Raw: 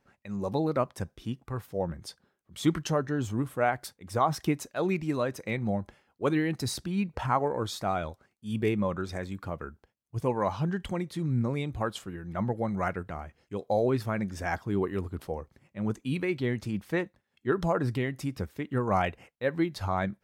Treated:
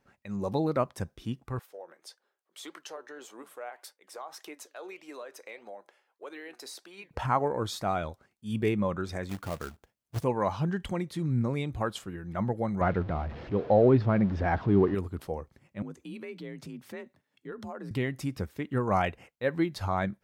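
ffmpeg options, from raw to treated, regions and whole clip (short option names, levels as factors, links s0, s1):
-filter_complex "[0:a]asettb=1/sr,asplit=3[s0][s1][s2];[s0]atrim=end=1.594[s3];[s1]atrim=start=1.59:end=7.11,asetpts=PTS-STARTPTS,afade=t=in:d=0.004:c=qsin,afade=t=out:st=5.516:d=0.004:c=qsin,highpass=f=420:w=0.5412,highpass=f=420:w=1.3066,acompressor=threshold=0.0158:ratio=3:attack=3.2:release=140:knee=1:detection=peak,flanger=delay=3.3:depth=5:regen=85:speed=1.7:shape=sinusoidal[s4];[s2]atrim=start=7.106[s5];[s3][s4]acrossfade=d=0.004:c1=hsin:c2=qsin[s6];[s6][s5]acrossfade=d=0.004:c1=qsin:c2=hsin,asettb=1/sr,asplit=3[s7][s8][s9];[s7]atrim=end=9.294[s10];[s8]atrim=start=9.29:end=10.24,asetpts=PTS-STARTPTS,afade=t=in:d=0.004:c=qsin,afade=t=out:st=0.946:d=0.004:c=qsin,acrusher=bits=2:mode=log:mix=0:aa=0.000001,equalizer=f=670:t=o:w=0.25:g=3[s11];[s9]atrim=start=10.236[s12];[s10][s11]acrossfade=d=0.004:c1=hsin:c2=qsin[s13];[s13][s12]acrossfade=d=0.004:c1=qsin:c2=hsin,asettb=1/sr,asplit=3[s14][s15][s16];[s14]atrim=end=12.814[s17];[s15]atrim=start=12.81:end=14.95,asetpts=PTS-STARTPTS,afade=t=in:d=0.004:c=qsin,afade=t=out:st=2.136:d=0.004:c=qsin,aeval=exprs='val(0)+0.5*0.0106*sgn(val(0))':c=same,lowpass=f=4400:w=0.5412,lowpass=f=4400:w=1.3066,tiltshelf=f=1300:g=6[s18];[s16]atrim=start=14.946[s19];[s17][s18]acrossfade=d=0.004:c1=hsin:c2=qsin[s20];[s20][s19]acrossfade=d=0.004:c1=qsin:c2=hsin,asettb=1/sr,asplit=3[s21][s22][s23];[s21]atrim=end=15.824[s24];[s22]atrim=start=15.82:end=17.91,asetpts=PTS-STARTPTS,afade=t=in:d=0.004:c=qsin,afade=t=out:st=2.086:d=0.004:c=qsin,acompressor=threshold=0.00708:ratio=2.5:attack=3.2:release=140:knee=1:detection=peak,afreqshift=44[s25];[s23]atrim=start=17.906[s26];[s24][s25]acrossfade=d=0.004:c1=hsin:c2=qsin[s27];[s27][s26]acrossfade=d=0.004:c1=qsin:c2=hsin"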